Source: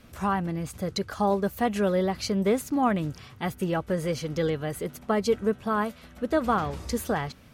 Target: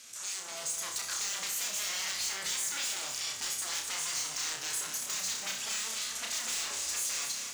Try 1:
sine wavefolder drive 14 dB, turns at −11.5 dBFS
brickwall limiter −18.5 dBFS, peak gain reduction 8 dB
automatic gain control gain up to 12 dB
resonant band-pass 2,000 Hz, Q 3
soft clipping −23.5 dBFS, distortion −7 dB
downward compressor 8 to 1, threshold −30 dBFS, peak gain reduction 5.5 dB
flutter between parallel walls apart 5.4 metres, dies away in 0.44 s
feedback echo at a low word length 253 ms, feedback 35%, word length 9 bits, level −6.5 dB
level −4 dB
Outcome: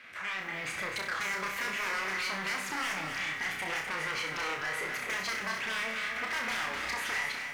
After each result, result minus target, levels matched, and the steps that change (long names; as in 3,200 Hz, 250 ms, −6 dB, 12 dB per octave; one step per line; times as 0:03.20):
8,000 Hz band −13.0 dB; sine wavefolder: distortion −15 dB
change: resonant band-pass 7,000 Hz, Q 3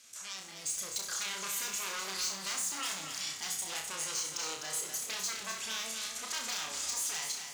sine wavefolder: distortion −15 dB
change: sine wavefolder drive 21 dB, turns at −11.5 dBFS